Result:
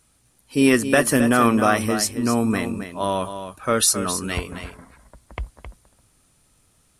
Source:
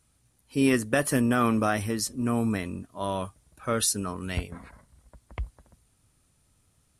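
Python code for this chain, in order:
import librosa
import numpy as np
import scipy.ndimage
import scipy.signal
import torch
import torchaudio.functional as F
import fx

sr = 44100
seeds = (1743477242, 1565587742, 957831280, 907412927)

p1 = fx.peak_eq(x, sr, hz=88.0, db=-6.5, octaves=2.0)
p2 = p1 + fx.echo_single(p1, sr, ms=266, db=-9.5, dry=0)
y = p2 * 10.0 ** (7.5 / 20.0)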